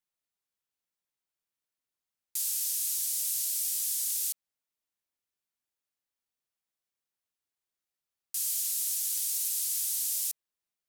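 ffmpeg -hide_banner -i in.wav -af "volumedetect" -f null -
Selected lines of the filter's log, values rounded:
mean_volume: -35.5 dB
max_volume: -17.6 dB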